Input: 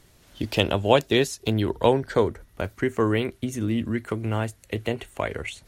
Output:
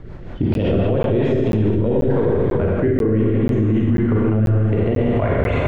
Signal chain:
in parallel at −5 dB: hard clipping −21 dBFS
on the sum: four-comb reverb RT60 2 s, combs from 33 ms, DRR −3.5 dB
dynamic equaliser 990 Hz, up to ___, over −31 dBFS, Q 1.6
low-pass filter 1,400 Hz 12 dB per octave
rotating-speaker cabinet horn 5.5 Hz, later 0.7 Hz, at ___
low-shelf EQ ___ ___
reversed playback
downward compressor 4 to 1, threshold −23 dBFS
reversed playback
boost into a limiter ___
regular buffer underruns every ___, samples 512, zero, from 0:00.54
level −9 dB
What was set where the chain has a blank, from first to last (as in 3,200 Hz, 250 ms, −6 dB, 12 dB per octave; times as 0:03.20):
−6 dB, 0:00.96, 250 Hz, +6.5 dB, +23 dB, 0.49 s